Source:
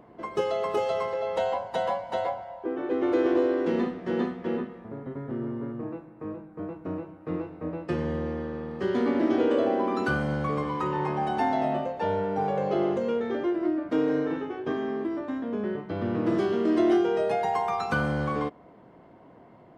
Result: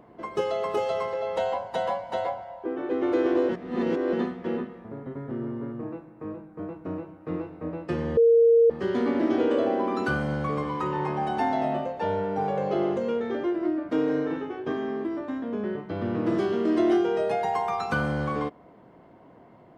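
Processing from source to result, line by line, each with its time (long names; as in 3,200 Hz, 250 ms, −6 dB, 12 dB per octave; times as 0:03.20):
0:03.49–0:04.13: reverse
0:08.17–0:08.70: beep over 463 Hz −14 dBFS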